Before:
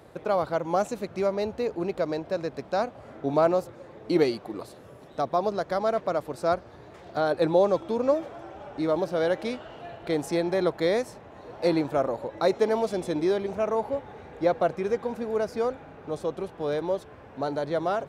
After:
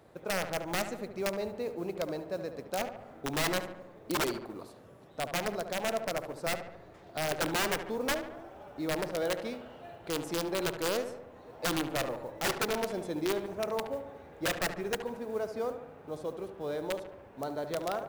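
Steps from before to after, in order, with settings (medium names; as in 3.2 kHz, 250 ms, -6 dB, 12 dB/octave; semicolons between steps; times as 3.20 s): integer overflow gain 17 dB; modulation noise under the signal 28 dB; filtered feedback delay 72 ms, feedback 61%, low-pass 2.3 kHz, level -9 dB; trim -7.5 dB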